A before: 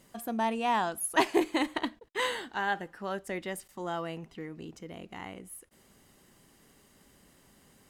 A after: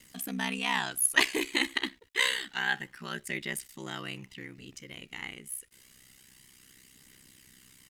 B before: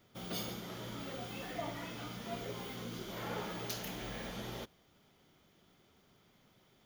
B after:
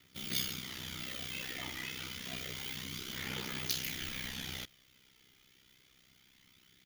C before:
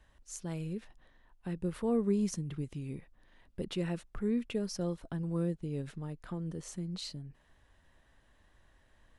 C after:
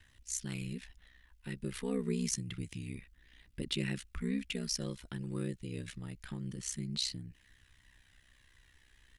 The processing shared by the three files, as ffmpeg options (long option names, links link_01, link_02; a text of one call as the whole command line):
ffmpeg -i in.wav -af "aeval=exprs='val(0)*sin(2*PI*32*n/s)':channel_layout=same,firequalizer=gain_entry='entry(280,0);entry(600,-9);entry(2000,10)':delay=0.05:min_phase=1,aphaser=in_gain=1:out_gain=1:delay=2.5:decay=0.26:speed=0.28:type=triangular" out.wav